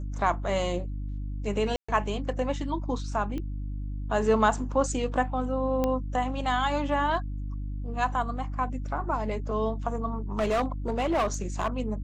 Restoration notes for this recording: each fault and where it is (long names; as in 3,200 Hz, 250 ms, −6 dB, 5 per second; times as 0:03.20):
mains hum 50 Hz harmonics 6 −33 dBFS
0:01.76–0:01.89: drop-out 125 ms
0:03.38: click −23 dBFS
0:05.84: click −14 dBFS
0:10.39–0:11.68: clipping −21.5 dBFS